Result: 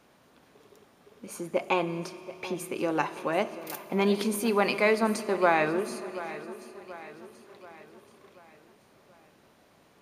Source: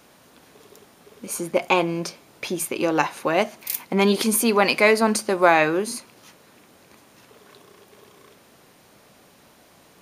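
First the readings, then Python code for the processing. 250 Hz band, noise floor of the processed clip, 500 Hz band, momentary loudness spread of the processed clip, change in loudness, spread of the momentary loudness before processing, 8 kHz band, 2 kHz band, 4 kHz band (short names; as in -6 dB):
-6.0 dB, -61 dBFS, -6.0 dB, 19 LU, -7.5 dB, 14 LU, -13.0 dB, -7.5 dB, -9.5 dB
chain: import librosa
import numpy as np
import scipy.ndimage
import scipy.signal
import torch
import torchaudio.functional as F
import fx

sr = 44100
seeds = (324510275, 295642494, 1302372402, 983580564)

y = fx.high_shelf(x, sr, hz=4300.0, db=-8.5)
y = fx.echo_feedback(y, sr, ms=732, feedback_pct=50, wet_db=-15.0)
y = fx.rev_fdn(y, sr, rt60_s=3.8, lf_ratio=1.0, hf_ratio=0.9, size_ms=15.0, drr_db=13.5)
y = y * 10.0 ** (-6.5 / 20.0)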